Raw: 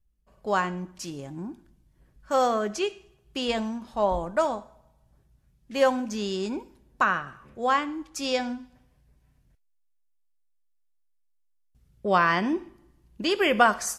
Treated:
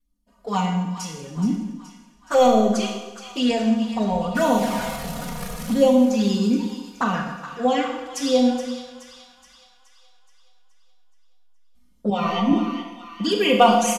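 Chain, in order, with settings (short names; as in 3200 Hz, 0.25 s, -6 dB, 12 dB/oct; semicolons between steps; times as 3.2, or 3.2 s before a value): 4.35–5.74 zero-crossing step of -26.5 dBFS; resonant low shelf 110 Hz -10 dB, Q 3; comb 4.2 ms, depth 95%; 1.36–2.48 sample leveller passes 1; LFO notch sine 1.6 Hz 240–2400 Hz; in parallel at -11 dB: soft clip -16.5 dBFS, distortion -10 dB; on the sum: envelope flanger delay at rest 3.3 ms, full sweep at -16.5 dBFS; downsampling 32000 Hz; on a send: split-band echo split 970 Hz, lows 0.123 s, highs 0.423 s, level -11 dB; on the sum: Schroeder reverb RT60 0.96 s, combs from 25 ms, DRR 3 dB; 12.1–12.53 ensemble effect; gain +1.5 dB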